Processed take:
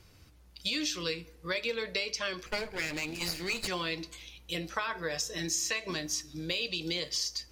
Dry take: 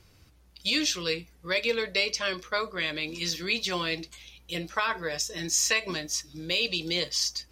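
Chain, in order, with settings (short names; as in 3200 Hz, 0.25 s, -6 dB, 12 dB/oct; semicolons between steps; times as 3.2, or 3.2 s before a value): 2.46–3.68 minimum comb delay 0.44 ms; compressor 4:1, threshold -30 dBFS, peak gain reduction 8.5 dB; FDN reverb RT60 1 s, low-frequency decay 1×, high-frequency decay 0.6×, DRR 17.5 dB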